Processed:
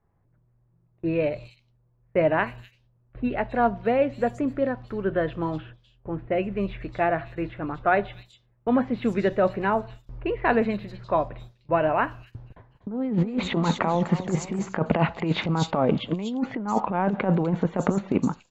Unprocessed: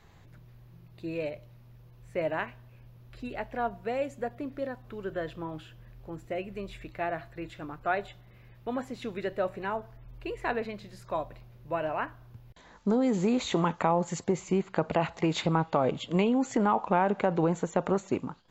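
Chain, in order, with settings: dynamic bell 210 Hz, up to +7 dB, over -44 dBFS, Q 2.1; compressor with a negative ratio -26 dBFS, ratio -0.5; level-controlled noise filter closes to 1.1 kHz, open at -23.5 dBFS; gate with hold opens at -38 dBFS; treble shelf 6.3 kHz -10.5 dB; bands offset in time lows, highs 250 ms, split 4 kHz; 12.22–14.66 s: modulated delay 245 ms, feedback 53%, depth 131 cents, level -13 dB; trim +6 dB

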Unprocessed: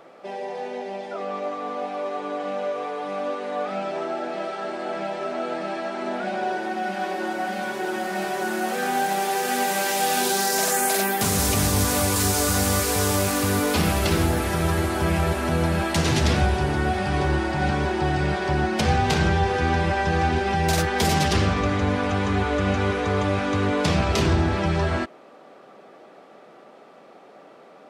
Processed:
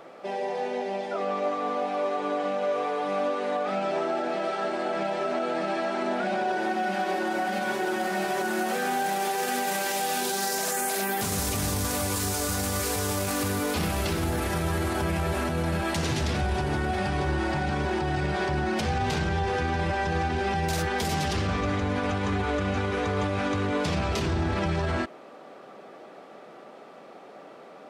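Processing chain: peak limiter -20.5 dBFS, peak gain reduction 11 dB; trim +1.5 dB

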